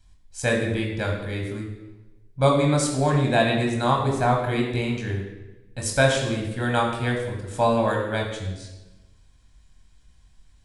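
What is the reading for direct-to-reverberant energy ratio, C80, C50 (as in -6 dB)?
0.0 dB, 6.5 dB, 4.5 dB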